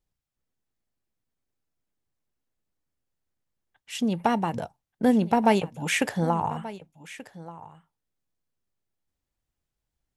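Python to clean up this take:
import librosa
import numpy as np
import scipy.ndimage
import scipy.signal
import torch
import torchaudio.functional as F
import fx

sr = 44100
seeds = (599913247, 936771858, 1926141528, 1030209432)

y = fx.fix_declip(x, sr, threshold_db=-10.5)
y = fx.fix_echo_inverse(y, sr, delay_ms=1182, level_db=-17.0)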